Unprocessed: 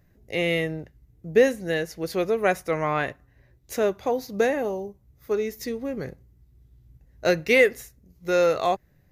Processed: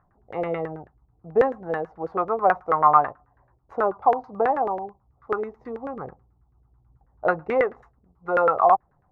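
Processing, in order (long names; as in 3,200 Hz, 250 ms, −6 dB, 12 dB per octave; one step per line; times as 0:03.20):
flat-topped bell 1,000 Hz +15 dB 1.1 octaves
auto-filter low-pass saw down 9.2 Hz 440–1,700 Hz
level −6.5 dB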